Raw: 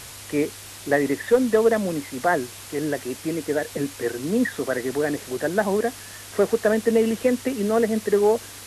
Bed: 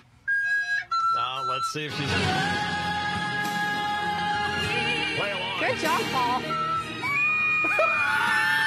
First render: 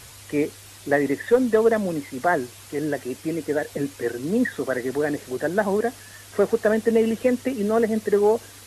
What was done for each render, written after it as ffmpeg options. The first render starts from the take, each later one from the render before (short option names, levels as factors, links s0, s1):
-af "afftdn=nr=6:nf=-40"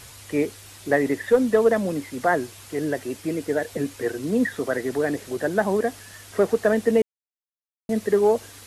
-filter_complex "[0:a]asplit=3[s0][s1][s2];[s0]atrim=end=7.02,asetpts=PTS-STARTPTS,afade=t=out:st=7.016:d=0.004:c=hsin[s3];[s1]atrim=start=7.02:end=7.89,asetpts=PTS-STARTPTS,volume=0[s4];[s2]atrim=start=7.89,asetpts=PTS-STARTPTS,afade=t=in:d=0.004:c=hsin[s5];[s3][s4][s5]concat=n=3:v=0:a=1"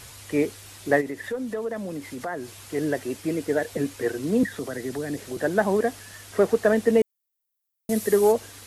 -filter_complex "[0:a]asplit=3[s0][s1][s2];[s0]afade=t=out:st=1:d=0.02[s3];[s1]acompressor=threshold=0.0251:ratio=2.5:attack=3.2:release=140:knee=1:detection=peak,afade=t=in:st=1:d=0.02,afade=t=out:st=2.6:d=0.02[s4];[s2]afade=t=in:st=2.6:d=0.02[s5];[s3][s4][s5]amix=inputs=3:normalize=0,asettb=1/sr,asplit=3[s6][s7][s8];[s6]atrim=end=4.434[s9];[s7]atrim=start=4.43:end=5.37,asetpts=PTS-STARTPTS,afade=t=in:d=0.004:c=qsin,afade=t=out:st=0.936:d=0.004:c=qsin,acrossover=split=260|3000[s10][s11][s12];[s11]acompressor=threshold=0.0282:ratio=6:attack=3.2:release=140:knee=2.83:detection=peak[s13];[s10][s13][s12]amix=inputs=3:normalize=0[s14];[s8]atrim=start=5.366[s15];[s9][s14]acrossfade=d=0.004:c1=hsin:c2=qsin[s16];[s16][s15]acrossfade=d=0.004:c1=qsin:c2=hsin,asplit=3[s17][s18][s19];[s17]afade=t=out:st=7.01:d=0.02[s20];[s18]aemphasis=mode=production:type=50fm,afade=t=in:st=7.01:d=0.02,afade=t=out:st=8.31:d=0.02[s21];[s19]afade=t=in:st=8.31:d=0.02[s22];[s20][s21][s22]amix=inputs=3:normalize=0"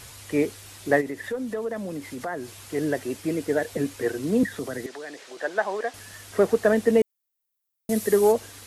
-filter_complex "[0:a]asettb=1/sr,asplit=3[s0][s1][s2];[s0]atrim=end=4.864[s3];[s1]atrim=start=4.86:end=5.94,asetpts=PTS-STARTPTS,afade=t=in:d=0.004:c=qsin,afade=t=out:st=1.076:d=0.004:c=qsin,highpass=630,lowpass=5900[s4];[s2]atrim=start=5.936[s5];[s3][s4]acrossfade=d=0.004:c1=hsin:c2=qsin[s6];[s6][s5]acrossfade=d=0.004:c1=qsin:c2=hsin"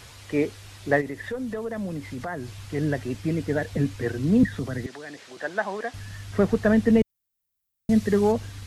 -filter_complex "[0:a]acrossover=split=6100[s0][s1];[s1]acompressor=threshold=0.00141:ratio=4:attack=1:release=60[s2];[s0][s2]amix=inputs=2:normalize=0,asubboost=boost=7:cutoff=160"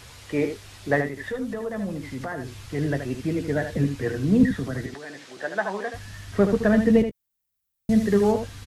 -filter_complex "[0:a]asplit=2[s0][s1];[s1]adelay=15,volume=0.251[s2];[s0][s2]amix=inputs=2:normalize=0,aecho=1:1:77:0.398"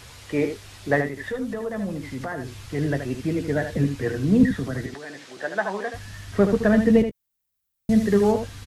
-af "volume=1.12"